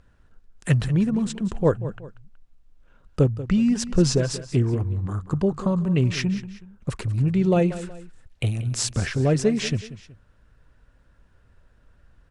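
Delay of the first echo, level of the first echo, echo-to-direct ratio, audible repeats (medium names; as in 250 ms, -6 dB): 186 ms, -14.5 dB, -14.0 dB, 2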